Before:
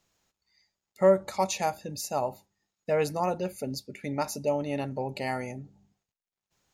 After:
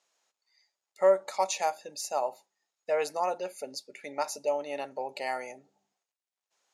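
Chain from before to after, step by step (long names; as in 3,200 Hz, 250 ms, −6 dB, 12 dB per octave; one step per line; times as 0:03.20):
Chebyshev band-pass filter 580–9,300 Hz, order 2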